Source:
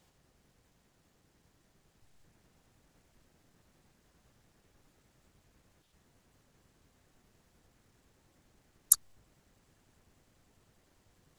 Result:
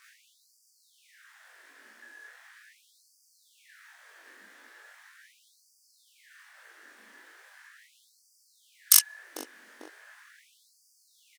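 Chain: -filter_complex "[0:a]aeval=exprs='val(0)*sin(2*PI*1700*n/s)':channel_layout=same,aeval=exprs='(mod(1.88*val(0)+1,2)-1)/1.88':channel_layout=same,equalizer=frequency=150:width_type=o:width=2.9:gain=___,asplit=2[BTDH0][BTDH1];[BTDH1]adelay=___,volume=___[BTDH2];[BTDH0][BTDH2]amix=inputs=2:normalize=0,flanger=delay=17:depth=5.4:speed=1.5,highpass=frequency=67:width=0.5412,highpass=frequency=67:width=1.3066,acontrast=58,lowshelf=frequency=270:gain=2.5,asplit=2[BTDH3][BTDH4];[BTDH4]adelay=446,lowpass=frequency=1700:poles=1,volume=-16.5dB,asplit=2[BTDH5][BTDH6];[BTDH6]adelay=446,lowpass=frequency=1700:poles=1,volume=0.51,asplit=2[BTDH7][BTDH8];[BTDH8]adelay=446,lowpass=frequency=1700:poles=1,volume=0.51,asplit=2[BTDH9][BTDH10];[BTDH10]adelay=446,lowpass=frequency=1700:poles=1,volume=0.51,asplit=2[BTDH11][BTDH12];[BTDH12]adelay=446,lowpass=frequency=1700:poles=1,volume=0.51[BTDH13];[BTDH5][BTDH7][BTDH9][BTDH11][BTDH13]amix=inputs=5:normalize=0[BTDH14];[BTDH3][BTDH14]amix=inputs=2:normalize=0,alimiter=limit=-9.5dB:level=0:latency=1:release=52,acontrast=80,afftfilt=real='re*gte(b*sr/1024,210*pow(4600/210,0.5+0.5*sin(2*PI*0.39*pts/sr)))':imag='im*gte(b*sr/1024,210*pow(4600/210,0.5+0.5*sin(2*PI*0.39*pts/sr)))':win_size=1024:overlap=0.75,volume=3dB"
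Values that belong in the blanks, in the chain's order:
11, 41, -2dB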